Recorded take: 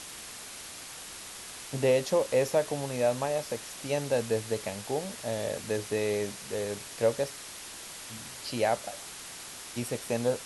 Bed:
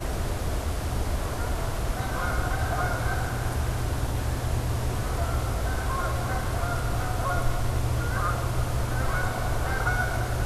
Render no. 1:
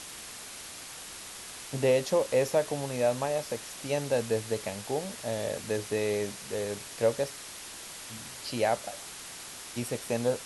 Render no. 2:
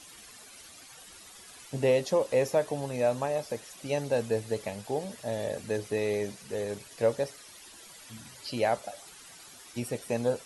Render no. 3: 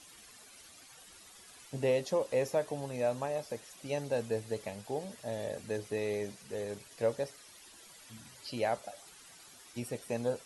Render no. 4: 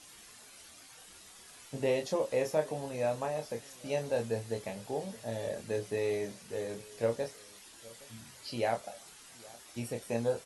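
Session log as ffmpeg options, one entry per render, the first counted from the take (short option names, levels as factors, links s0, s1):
-af anull
-af "afftdn=nr=12:nf=-44"
-af "volume=0.562"
-filter_complex "[0:a]asplit=2[s0][s1];[s1]adelay=26,volume=0.562[s2];[s0][s2]amix=inputs=2:normalize=0,asplit=2[s3][s4];[s4]adelay=816.3,volume=0.0794,highshelf=f=4000:g=-18.4[s5];[s3][s5]amix=inputs=2:normalize=0"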